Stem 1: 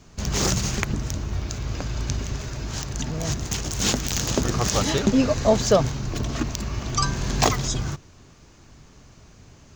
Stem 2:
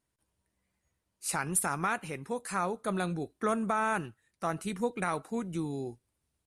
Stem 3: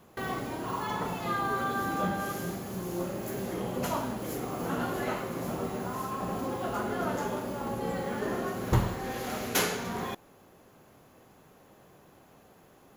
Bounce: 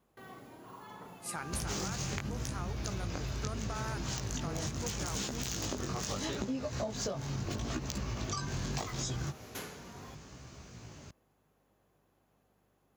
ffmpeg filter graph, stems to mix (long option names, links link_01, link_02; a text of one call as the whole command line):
ffmpeg -i stem1.wav -i stem2.wav -i stem3.wav -filter_complex "[0:a]acompressor=threshold=-25dB:ratio=6,flanger=delay=15:depth=7:speed=0.76,adelay=1350,volume=3dB[link_01];[1:a]volume=-7dB[link_02];[2:a]aeval=exprs='val(0)+0.00141*(sin(2*PI*50*n/s)+sin(2*PI*2*50*n/s)/2+sin(2*PI*3*50*n/s)/3+sin(2*PI*4*50*n/s)/4+sin(2*PI*5*50*n/s)/5)':channel_layout=same,volume=-16.5dB[link_03];[link_01][link_02][link_03]amix=inputs=3:normalize=0,highpass=66,acompressor=threshold=-33dB:ratio=6" out.wav